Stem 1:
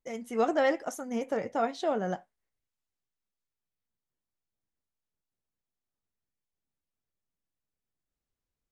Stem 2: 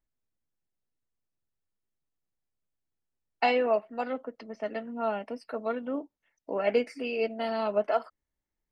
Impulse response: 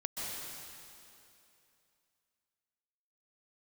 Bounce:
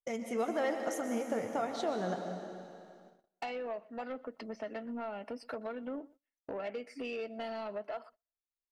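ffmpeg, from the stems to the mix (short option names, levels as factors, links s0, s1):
-filter_complex "[0:a]agate=range=0.0224:threshold=0.00891:ratio=3:detection=peak,acompressor=threshold=0.0158:ratio=3,volume=0.891,asplit=3[s0][s1][s2];[s1]volume=0.668[s3];[s2]volume=0.237[s4];[1:a]acompressor=threshold=0.0158:ratio=12,asoftclip=type=tanh:threshold=0.0211,volume=1.26,asplit=2[s5][s6];[s6]volume=0.0708[s7];[2:a]atrim=start_sample=2205[s8];[s3][s8]afir=irnorm=-1:irlink=0[s9];[s4][s7]amix=inputs=2:normalize=0,aecho=0:1:122|244|366|488:1|0.25|0.0625|0.0156[s10];[s0][s5][s9][s10]amix=inputs=4:normalize=0,agate=range=0.0631:threshold=0.00141:ratio=16:detection=peak"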